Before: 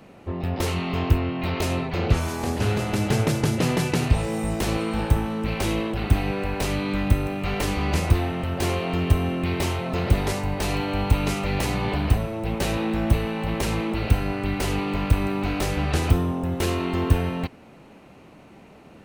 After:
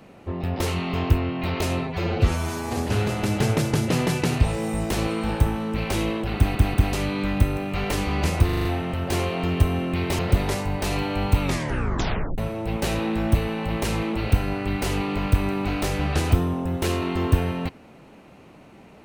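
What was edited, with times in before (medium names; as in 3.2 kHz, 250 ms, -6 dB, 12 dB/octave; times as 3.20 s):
1.87–2.47 s: stretch 1.5×
6.06 s: stutter in place 0.19 s, 3 plays
8.15 s: stutter 0.04 s, 6 plays
9.69–9.97 s: delete
11.20 s: tape stop 0.96 s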